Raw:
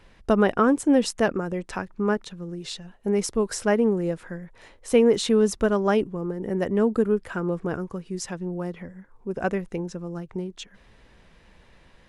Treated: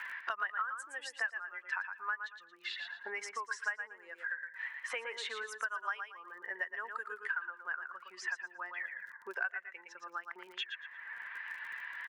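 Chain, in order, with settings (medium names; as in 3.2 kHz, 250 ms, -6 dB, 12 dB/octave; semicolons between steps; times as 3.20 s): expander on every frequency bin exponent 1.5; level-controlled noise filter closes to 2.4 kHz, open at -17.5 dBFS; compression 2:1, threshold -45 dBFS, peak gain reduction 16.5 dB; ladder high-pass 1 kHz, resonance 45%; peaking EQ 1.7 kHz +13.5 dB 0.46 oct; feedback delay 114 ms, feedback 19%, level -8 dB; crackle 41 per s -78 dBFS; three bands compressed up and down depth 100%; trim +10 dB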